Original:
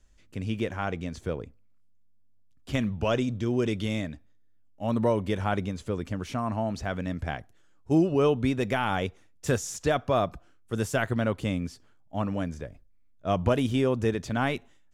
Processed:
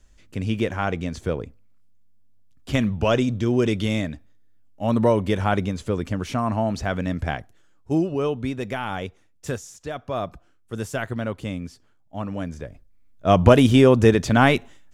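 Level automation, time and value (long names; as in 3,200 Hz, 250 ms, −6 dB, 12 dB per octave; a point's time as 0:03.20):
0:07.30 +6 dB
0:08.23 −1.5 dB
0:09.47 −1.5 dB
0:09.77 −9 dB
0:10.28 −1 dB
0:12.21 −1 dB
0:13.44 +11 dB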